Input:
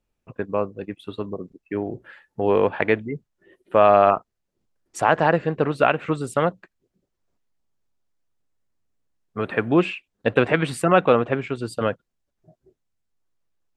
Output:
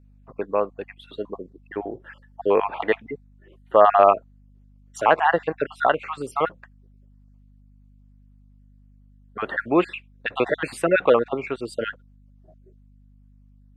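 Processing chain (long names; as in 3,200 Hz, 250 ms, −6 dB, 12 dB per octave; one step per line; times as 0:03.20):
time-frequency cells dropped at random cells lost 33%
bass and treble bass −14 dB, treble −6 dB
mains hum 50 Hz, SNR 28 dB
level +2.5 dB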